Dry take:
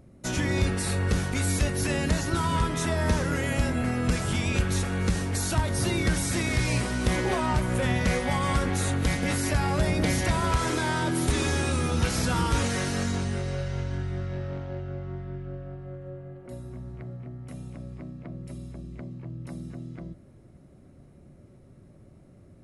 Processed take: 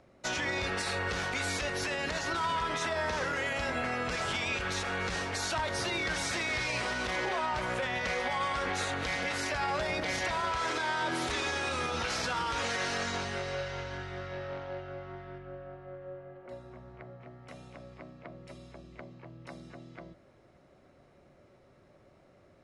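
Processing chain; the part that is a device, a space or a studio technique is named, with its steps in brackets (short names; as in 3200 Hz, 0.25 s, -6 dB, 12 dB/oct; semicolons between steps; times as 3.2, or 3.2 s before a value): 15.38–17.21 high shelf 3400 Hz -8.5 dB; DJ mixer with the lows and highs turned down (three-band isolator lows -17 dB, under 470 Hz, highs -22 dB, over 6200 Hz; limiter -27 dBFS, peak gain reduction 9.5 dB); gain +3.5 dB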